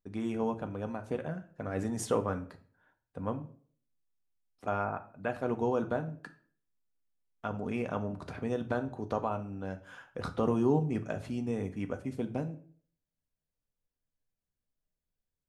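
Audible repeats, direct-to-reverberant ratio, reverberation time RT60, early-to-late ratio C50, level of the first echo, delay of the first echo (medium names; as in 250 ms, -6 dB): no echo, 6.5 dB, 0.50 s, 14.5 dB, no echo, no echo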